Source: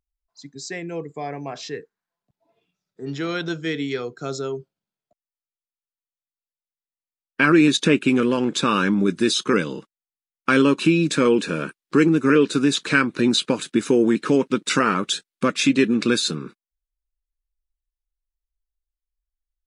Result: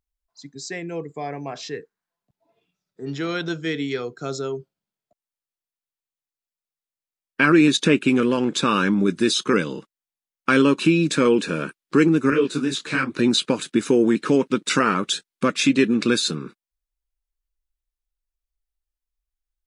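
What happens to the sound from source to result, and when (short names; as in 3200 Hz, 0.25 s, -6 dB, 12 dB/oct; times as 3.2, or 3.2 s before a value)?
12.3–13.14 detuned doubles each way 40 cents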